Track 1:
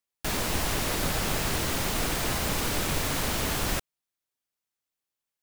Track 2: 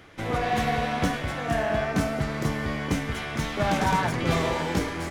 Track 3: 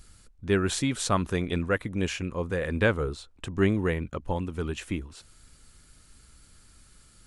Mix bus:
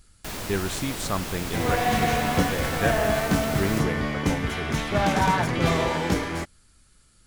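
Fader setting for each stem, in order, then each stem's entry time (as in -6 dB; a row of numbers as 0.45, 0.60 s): -5.0, +2.0, -3.0 dB; 0.00, 1.35, 0.00 s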